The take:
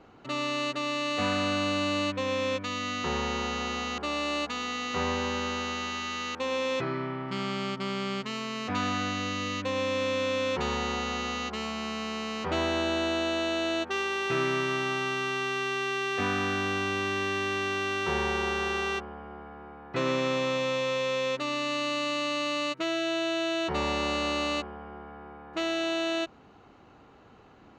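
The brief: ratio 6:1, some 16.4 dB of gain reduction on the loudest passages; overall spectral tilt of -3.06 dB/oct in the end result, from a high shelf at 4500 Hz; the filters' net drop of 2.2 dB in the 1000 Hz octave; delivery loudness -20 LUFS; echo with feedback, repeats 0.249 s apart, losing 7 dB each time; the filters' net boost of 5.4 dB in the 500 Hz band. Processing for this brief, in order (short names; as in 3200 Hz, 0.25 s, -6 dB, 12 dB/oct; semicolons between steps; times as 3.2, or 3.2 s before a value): bell 500 Hz +8 dB; bell 1000 Hz -5 dB; high shelf 4500 Hz -3.5 dB; compressor 6:1, threshold -40 dBFS; feedback echo 0.249 s, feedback 45%, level -7 dB; gain +21 dB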